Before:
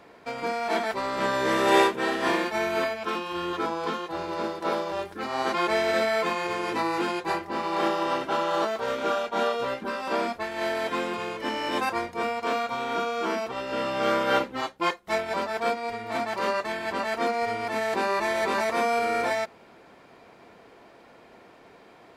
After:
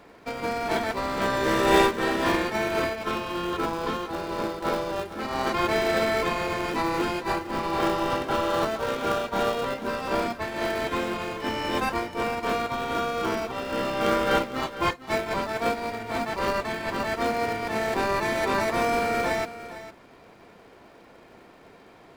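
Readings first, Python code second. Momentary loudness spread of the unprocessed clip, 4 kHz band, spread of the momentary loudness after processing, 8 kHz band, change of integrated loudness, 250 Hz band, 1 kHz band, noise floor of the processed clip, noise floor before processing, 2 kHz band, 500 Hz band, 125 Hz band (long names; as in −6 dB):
7 LU, +0.5 dB, 7 LU, +2.0 dB, +0.5 dB, +2.5 dB, 0.0 dB, −51 dBFS, −53 dBFS, +0.5 dB, +0.5 dB, +7.5 dB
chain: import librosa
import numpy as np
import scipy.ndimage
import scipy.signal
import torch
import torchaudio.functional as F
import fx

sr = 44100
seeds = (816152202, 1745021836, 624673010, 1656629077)

p1 = fx.sample_hold(x, sr, seeds[0], rate_hz=1000.0, jitter_pct=20)
p2 = x + F.gain(torch.from_numpy(p1), -9.0).numpy()
y = p2 + 10.0 ** (-14.0 / 20.0) * np.pad(p2, (int(455 * sr / 1000.0), 0))[:len(p2)]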